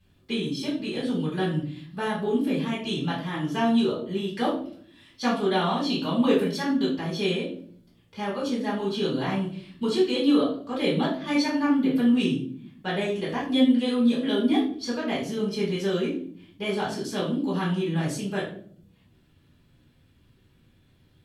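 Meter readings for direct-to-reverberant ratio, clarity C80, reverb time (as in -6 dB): -8.0 dB, 9.5 dB, 0.55 s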